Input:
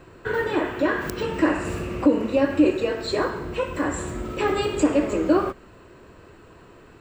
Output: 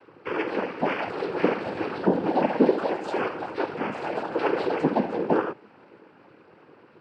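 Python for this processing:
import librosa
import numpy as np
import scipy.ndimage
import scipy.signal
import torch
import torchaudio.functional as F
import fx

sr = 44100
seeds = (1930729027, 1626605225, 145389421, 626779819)

y = fx.echo_pitch(x, sr, ms=728, semitones=5, count=2, db_per_echo=-6.0)
y = fx.bandpass_edges(y, sr, low_hz=200.0, high_hz=2100.0)
y = fx.noise_vocoder(y, sr, seeds[0], bands=8)
y = y * 10.0 ** (-2.5 / 20.0)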